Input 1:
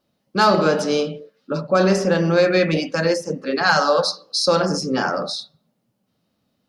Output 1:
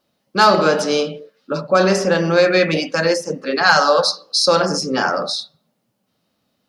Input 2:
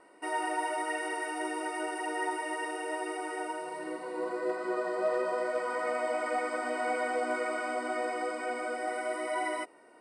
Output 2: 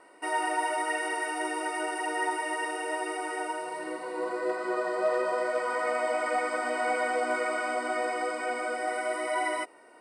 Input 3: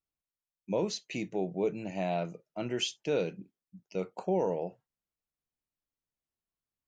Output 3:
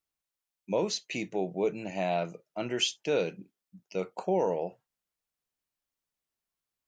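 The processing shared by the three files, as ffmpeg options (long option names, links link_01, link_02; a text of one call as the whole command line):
ffmpeg -i in.wav -af "lowshelf=frequency=350:gain=-7,volume=4.5dB" out.wav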